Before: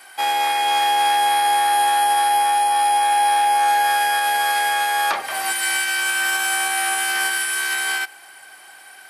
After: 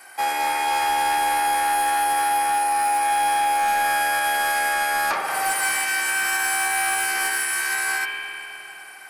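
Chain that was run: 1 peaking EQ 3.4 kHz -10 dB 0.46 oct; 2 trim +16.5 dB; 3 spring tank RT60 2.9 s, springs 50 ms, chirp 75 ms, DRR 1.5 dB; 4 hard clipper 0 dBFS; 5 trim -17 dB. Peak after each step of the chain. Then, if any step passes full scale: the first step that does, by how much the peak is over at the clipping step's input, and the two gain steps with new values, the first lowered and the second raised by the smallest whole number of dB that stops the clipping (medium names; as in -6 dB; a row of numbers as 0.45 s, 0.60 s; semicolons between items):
-9.5 dBFS, +7.0 dBFS, +6.5 dBFS, 0.0 dBFS, -17.0 dBFS; step 2, 6.5 dB; step 2 +9.5 dB, step 5 -10 dB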